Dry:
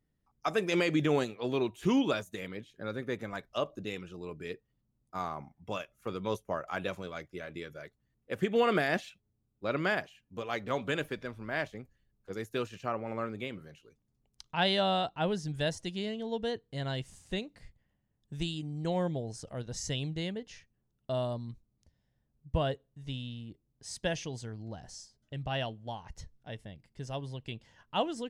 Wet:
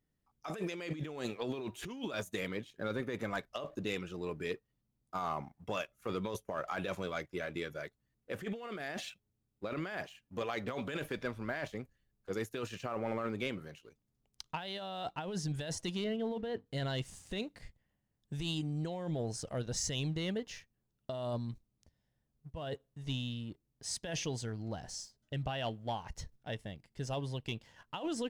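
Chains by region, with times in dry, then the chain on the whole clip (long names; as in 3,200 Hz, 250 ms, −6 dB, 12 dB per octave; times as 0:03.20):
0:16.04–0:16.66: Gaussian smoothing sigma 2.6 samples + mains-hum notches 50/100/150/200/250/300/350 Hz
whole clip: low-shelf EQ 240 Hz −3 dB; compressor whose output falls as the input rises −37 dBFS, ratio −1; leveller curve on the samples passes 1; level −3.5 dB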